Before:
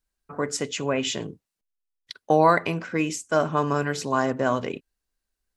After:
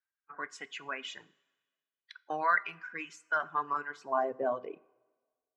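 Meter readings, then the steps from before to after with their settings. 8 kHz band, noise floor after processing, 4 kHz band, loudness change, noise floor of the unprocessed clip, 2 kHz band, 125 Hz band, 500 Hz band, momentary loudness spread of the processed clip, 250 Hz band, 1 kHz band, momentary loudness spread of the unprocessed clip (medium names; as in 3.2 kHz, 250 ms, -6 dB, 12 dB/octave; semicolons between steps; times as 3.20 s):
under -20 dB, under -85 dBFS, -13.5 dB, -9.5 dB, -85 dBFS, -4.0 dB, -29.0 dB, -13.0 dB, 16 LU, -20.5 dB, -7.5 dB, 18 LU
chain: coarse spectral quantiser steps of 15 dB; reverb removal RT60 1.7 s; peaking EQ 530 Hz -6 dB 0.32 oct; band-pass sweep 1.6 kHz -> 580 Hz, 3.43–4.42 s; two-slope reverb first 0.4 s, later 1.5 s, from -15 dB, DRR 15.5 dB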